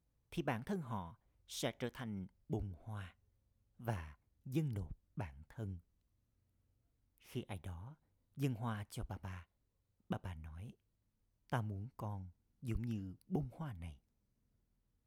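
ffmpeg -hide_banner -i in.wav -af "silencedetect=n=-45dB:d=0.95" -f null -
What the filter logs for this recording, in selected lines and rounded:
silence_start: 5.77
silence_end: 7.35 | silence_duration: 1.58
silence_start: 13.90
silence_end: 15.06 | silence_duration: 1.16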